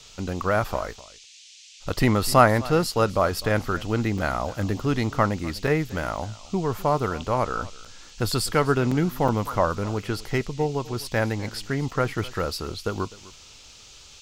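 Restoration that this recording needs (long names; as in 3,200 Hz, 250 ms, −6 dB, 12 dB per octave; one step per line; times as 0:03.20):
repair the gap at 0:04.18/0:05.67/0:06.17/0:07.85/0:08.91/0:09.28/0:11.91, 4.8 ms
noise reduction from a noise print 22 dB
echo removal 253 ms −20 dB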